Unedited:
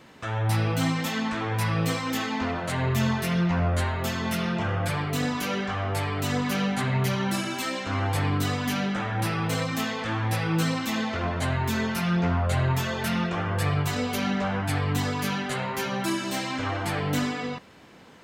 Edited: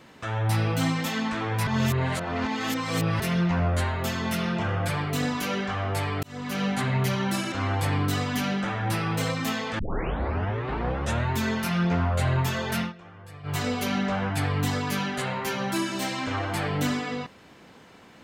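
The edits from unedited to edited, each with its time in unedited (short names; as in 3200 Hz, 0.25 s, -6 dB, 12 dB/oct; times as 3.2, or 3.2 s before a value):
1.67–3.2 reverse
6.23–6.68 fade in
7.52–7.84 cut
10.11 tape start 1.52 s
13.11–13.89 dip -19 dB, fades 0.14 s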